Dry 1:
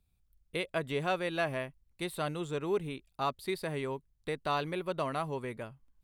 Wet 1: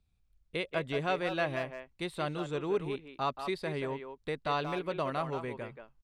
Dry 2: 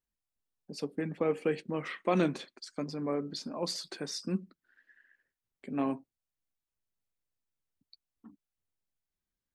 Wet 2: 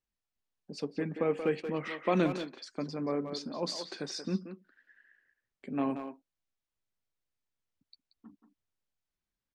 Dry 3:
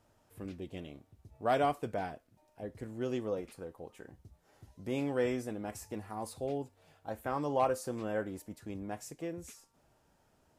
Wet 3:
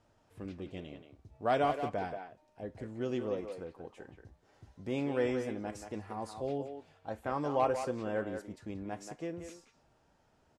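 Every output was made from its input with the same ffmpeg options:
-filter_complex "[0:a]lowpass=6600,asplit=2[s0][s1];[s1]adelay=180,highpass=300,lowpass=3400,asoftclip=type=hard:threshold=0.0562,volume=0.447[s2];[s0][s2]amix=inputs=2:normalize=0"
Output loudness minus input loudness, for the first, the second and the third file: +0.5 LU, +0.5 LU, +0.5 LU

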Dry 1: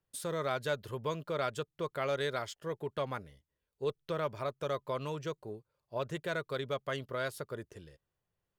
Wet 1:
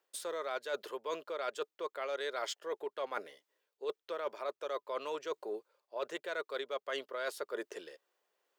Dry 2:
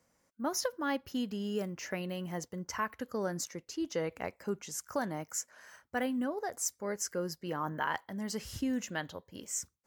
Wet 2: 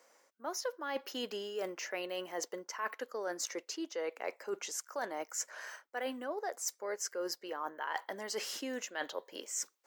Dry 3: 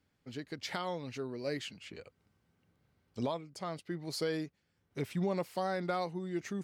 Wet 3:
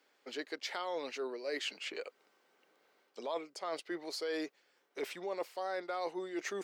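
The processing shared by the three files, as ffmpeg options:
-af "highpass=f=380:w=0.5412,highpass=f=380:w=1.3066,equalizer=f=11000:t=o:w=0.77:g=-6.5,areverse,acompressor=threshold=0.00562:ratio=6,areverse,volume=2.99"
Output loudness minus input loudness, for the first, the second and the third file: -3.0 LU, -3.0 LU, -2.0 LU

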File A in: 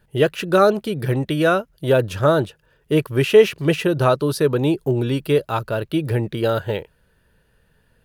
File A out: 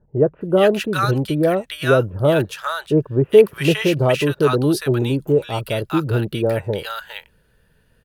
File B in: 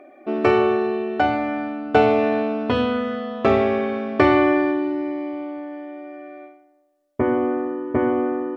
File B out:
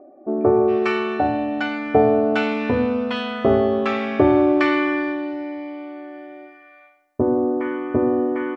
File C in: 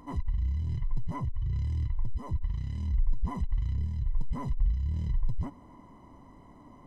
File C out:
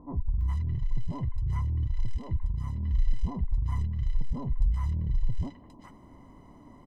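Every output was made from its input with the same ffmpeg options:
-filter_complex "[0:a]acrossover=split=970[s0][s1];[s1]adelay=410[s2];[s0][s2]amix=inputs=2:normalize=0,volume=1.19"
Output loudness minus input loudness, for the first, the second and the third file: +1.0 LU, +1.0 LU, +1.5 LU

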